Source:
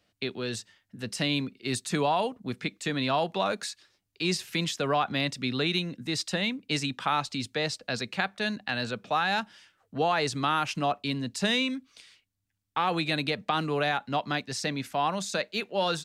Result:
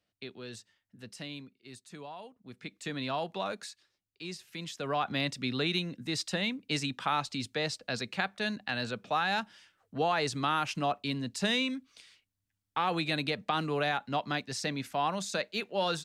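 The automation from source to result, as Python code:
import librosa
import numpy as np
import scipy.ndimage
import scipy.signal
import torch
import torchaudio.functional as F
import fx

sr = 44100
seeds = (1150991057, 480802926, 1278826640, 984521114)

y = fx.gain(x, sr, db=fx.line((0.98, -11.0), (1.7, -19.0), (2.33, -19.0), (2.81, -7.0), (3.48, -7.0), (4.45, -14.5), (5.08, -3.0)))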